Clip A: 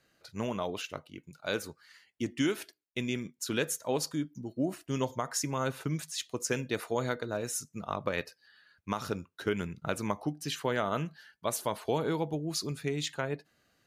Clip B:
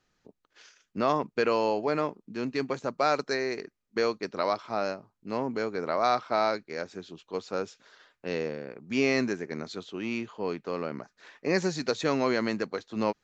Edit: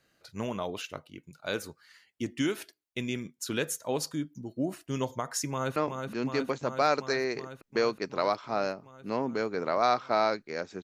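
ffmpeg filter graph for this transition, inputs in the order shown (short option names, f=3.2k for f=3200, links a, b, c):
-filter_complex "[0:a]apad=whole_dur=10.83,atrim=end=10.83,atrim=end=5.762[a];[1:a]atrim=start=1.968:end=7.04[b];[a][b]acrossfade=d=0.004:c1=hsin:c2=hsin,asplit=2[c][d];[d]afade=t=in:st=5.5:d=0.01,afade=t=out:st=5.76:d=0.01,aecho=0:1:370|740|1110|1480|1850|2220|2590|2960|3330|3700|4070|4440:0.562341|0.449873|0.359898|0.287919|0.230335|0.184268|0.147414|0.117932|0.0943452|0.0754762|0.0603809|0.0483048[e];[c][e]amix=inputs=2:normalize=0"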